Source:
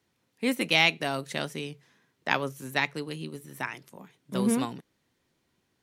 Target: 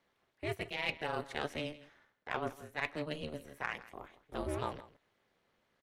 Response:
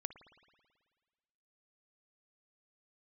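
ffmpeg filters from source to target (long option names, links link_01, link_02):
-af "highpass=160,bass=frequency=250:gain=-13,treble=frequency=4000:gain=-13,bandreject=frequency=2500:width=18,areverse,acompressor=threshold=-35dB:ratio=16,areverse,aeval=exprs='0.1*(cos(1*acos(clip(val(0)/0.1,-1,1)))-cos(1*PI/2))+0.00316*(cos(8*acos(clip(val(0)/0.1,-1,1)))-cos(8*PI/2))':channel_layout=same,aeval=exprs='val(0)*sin(2*PI*150*n/s)':channel_layout=same,aecho=1:1:163:0.133,volume=5dB"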